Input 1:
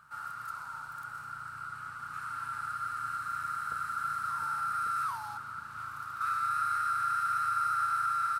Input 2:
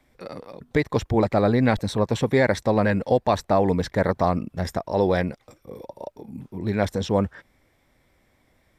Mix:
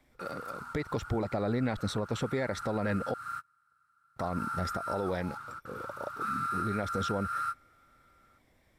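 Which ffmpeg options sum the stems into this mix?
ffmpeg -i stem1.wav -i stem2.wav -filter_complex "[0:a]volume=-2dB[link_01];[1:a]volume=-4dB,asplit=3[link_02][link_03][link_04];[link_02]atrim=end=3.14,asetpts=PTS-STARTPTS,afade=type=out:start_time=3.136:duration=0.004:curve=hsin[link_05];[link_03]atrim=start=3.14:end=4.16,asetpts=PTS-STARTPTS,volume=0[link_06];[link_04]atrim=start=4.16,asetpts=PTS-STARTPTS,afade=type=in:duration=0.004:curve=hsin[link_07];[link_05][link_06][link_07]concat=n=3:v=0:a=1,asplit=2[link_08][link_09];[link_09]apad=whole_len=370050[link_10];[link_01][link_10]sidechaingate=range=-33dB:threshold=-56dB:ratio=16:detection=peak[link_11];[link_11][link_08]amix=inputs=2:normalize=0,alimiter=limit=-22dB:level=0:latency=1:release=152" out.wav

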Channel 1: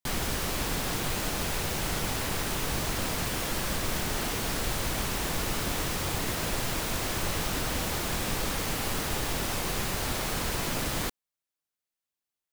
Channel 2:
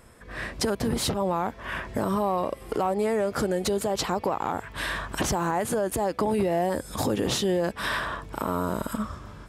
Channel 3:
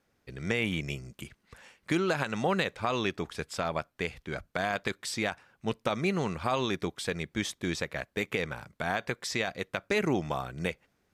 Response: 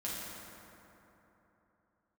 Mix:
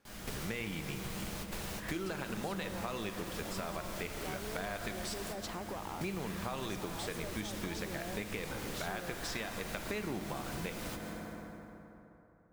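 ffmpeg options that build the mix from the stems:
-filter_complex "[0:a]volume=-6.5dB,asplit=2[link_01][link_02];[link_02]volume=-10.5dB[link_03];[1:a]volume=22dB,asoftclip=hard,volume=-22dB,adelay=1450,volume=-10dB[link_04];[2:a]volume=0.5dB,asplit=3[link_05][link_06][link_07];[link_05]atrim=end=5.14,asetpts=PTS-STARTPTS,afade=type=out:start_time=5.136:duration=0.004:curve=hsin[link_08];[link_06]atrim=start=5.14:end=6.01,asetpts=PTS-STARTPTS,volume=0[link_09];[link_07]atrim=start=6.01,asetpts=PTS-STARTPTS,afade=type=in:duration=0.004:curve=hsin[link_10];[link_08][link_09][link_10]concat=n=3:v=0:a=1,asplit=3[link_11][link_12][link_13];[link_12]volume=-8dB[link_14];[link_13]apad=whole_len=552464[link_15];[link_01][link_15]sidechaingate=range=-33dB:threshold=-60dB:ratio=16:detection=peak[link_16];[3:a]atrim=start_sample=2205[link_17];[link_03][link_14]amix=inputs=2:normalize=0[link_18];[link_18][link_17]afir=irnorm=-1:irlink=0[link_19];[link_16][link_04][link_11][link_19]amix=inputs=4:normalize=0,acompressor=threshold=-38dB:ratio=4"

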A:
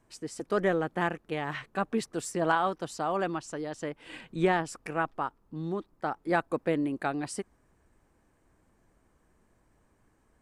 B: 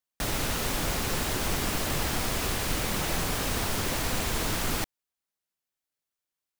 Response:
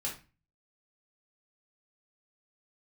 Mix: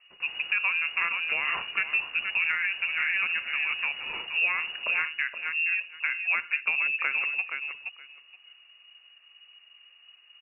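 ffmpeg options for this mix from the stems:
-filter_complex "[0:a]volume=3dB,asplit=3[link_01][link_02][link_03];[link_02]volume=-13dB[link_04];[link_03]volume=-8dB[link_05];[1:a]volume=-16dB[link_06];[2:a]atrim=start_sample=2205[link_07];[link_04][link_07]afir=irnorm=-1:irlink=0[link_08];[link_05]aecho=0:1:472|944|1416:1|0.15|0.0225[link_09];[link_01][link_06][link_08][link_09]amix=inputs=4:normalize=0,lowshelf=frequency=190:gain=8,lowpass=frequency=2500:width_type=q:width=0.5098,lowpass=frequency=2500:width_type=q:width=0.6013,lowpass=frequency=2500:width_type=q:width=0.9,lowpass=frequency=2500:width_type=q:width=2.563,afreqshift=-2900,acompressor=threshold=-23dB:ratio=6"

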